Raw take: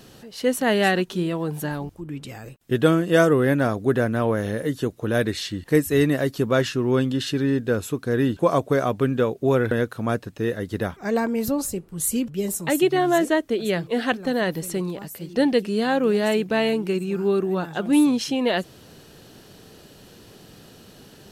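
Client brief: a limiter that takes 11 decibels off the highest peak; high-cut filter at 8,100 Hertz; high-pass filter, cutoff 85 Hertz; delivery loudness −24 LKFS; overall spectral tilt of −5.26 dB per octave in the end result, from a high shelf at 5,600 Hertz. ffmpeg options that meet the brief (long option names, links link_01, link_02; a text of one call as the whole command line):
ffmpeg -i in.wav -af "highpass=85,lowpass=8100,highshelf=frequency=5600:gain=3.5,volume=1.5dB,alimiter=limit=-13.5dB:level=0:latency=1" out.wav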